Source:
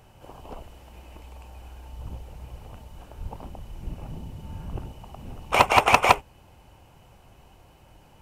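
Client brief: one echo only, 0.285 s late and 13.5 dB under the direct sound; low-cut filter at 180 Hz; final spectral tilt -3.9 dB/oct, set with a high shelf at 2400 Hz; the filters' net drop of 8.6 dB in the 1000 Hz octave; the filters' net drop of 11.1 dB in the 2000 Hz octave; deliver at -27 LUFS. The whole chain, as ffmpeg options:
-af "highpass=180,equalizer=f=1k:t=o:g=-8,equalizer=f=2k:t=o:g=-9,highshelf=f=2.4k:g=-6.5,aecho=1:1:285:0.211,volume=3.5dB"

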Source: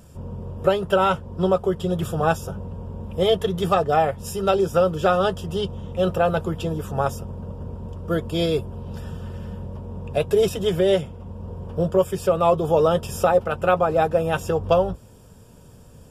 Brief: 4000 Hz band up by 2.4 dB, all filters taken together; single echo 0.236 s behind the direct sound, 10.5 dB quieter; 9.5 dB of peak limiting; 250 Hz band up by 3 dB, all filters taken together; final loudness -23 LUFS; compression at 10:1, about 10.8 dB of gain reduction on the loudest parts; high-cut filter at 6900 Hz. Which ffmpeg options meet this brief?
-af "lowpass=6.9k,equalizer=f=250:t=o:g=5.5,equalizer=f=4k:t=o:g=3.5,acompressor=threshold=-23dB:ratio=10,alimiter=limit=-20dB:level=0:latency=1,aecho=1:1:236:0.299,volume=7.5dB"

